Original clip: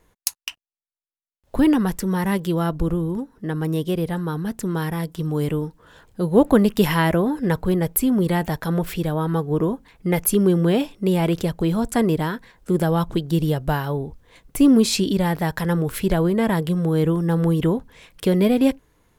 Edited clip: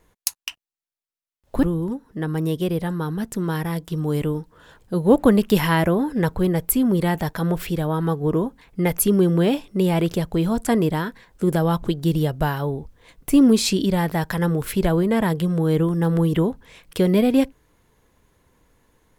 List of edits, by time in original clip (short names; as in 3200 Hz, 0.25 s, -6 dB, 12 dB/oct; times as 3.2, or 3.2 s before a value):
1.63–2.9 cut